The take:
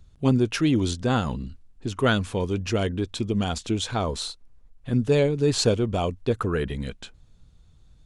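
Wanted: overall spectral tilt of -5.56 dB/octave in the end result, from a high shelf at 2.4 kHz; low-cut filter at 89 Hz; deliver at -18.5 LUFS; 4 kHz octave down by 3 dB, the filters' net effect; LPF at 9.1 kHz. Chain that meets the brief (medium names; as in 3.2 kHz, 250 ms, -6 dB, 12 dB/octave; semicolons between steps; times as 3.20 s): high-pass 89 Hz; low-pass 9.1 kHz; treble shelf 2.4 kHz +5.5 dB; peaking EQ 4 kHz -8.5 dB; trim +6.5 dB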